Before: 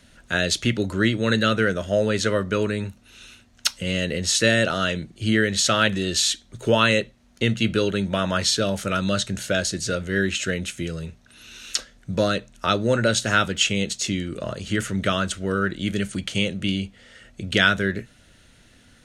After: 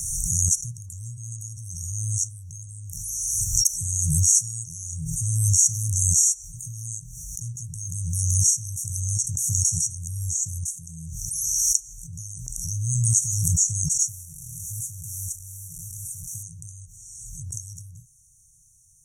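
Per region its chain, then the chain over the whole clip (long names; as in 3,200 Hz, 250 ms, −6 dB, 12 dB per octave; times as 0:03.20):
0:14.08–0:16.43: linear delta modulator 64 kbit/s, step −30 dBFS + parametric band 5,700 Hz −5 dB 1.6 octaves
whole clip: brick-wall band-stop 170–5,600 Hz; tilt shelving filter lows −8 dB, about 1,300 Hz; background raised ahead of every attack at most 24 dB per second; level −1 dB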